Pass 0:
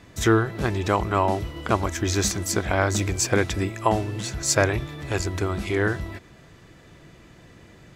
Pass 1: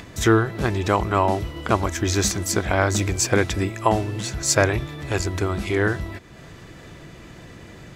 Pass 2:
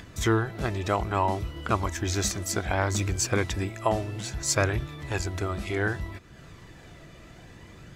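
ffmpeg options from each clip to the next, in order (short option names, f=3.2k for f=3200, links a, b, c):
-af "acompressor=mode=upward:threshold=-36dB:ratio=2.5,volume=2dB"
-af "flanger=delay=0.6:depth=1.1:regen=62:speed=0.63:shape=triangular,volume=-1.5dB"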